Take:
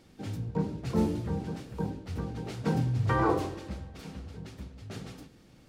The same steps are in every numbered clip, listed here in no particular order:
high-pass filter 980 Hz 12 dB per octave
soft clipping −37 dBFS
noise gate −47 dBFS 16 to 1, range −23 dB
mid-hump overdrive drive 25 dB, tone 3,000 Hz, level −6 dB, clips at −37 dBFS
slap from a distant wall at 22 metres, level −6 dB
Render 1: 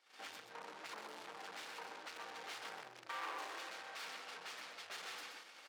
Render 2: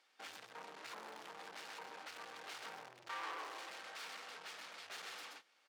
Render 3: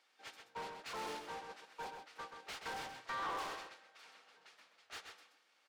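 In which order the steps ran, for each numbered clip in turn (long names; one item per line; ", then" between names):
soft clipping, then mid-hump overdrive, then slap from a distant wall, then noise gate, then high-pass filter
noise gate, then slap from a distant wall, then mid-hump overdrive, then soft clipping, then high-pass filter
high-pass filter, then noise gate, then mid-hump overdrive, then soft clipping, then slap from a distant wall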